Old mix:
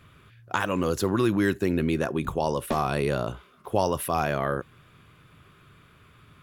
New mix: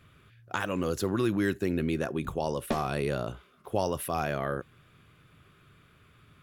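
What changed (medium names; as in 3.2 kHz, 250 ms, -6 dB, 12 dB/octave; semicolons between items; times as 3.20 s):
speech -4.0 dB; master: add peaking EQ 990 Hz -4 dB 0.41 oct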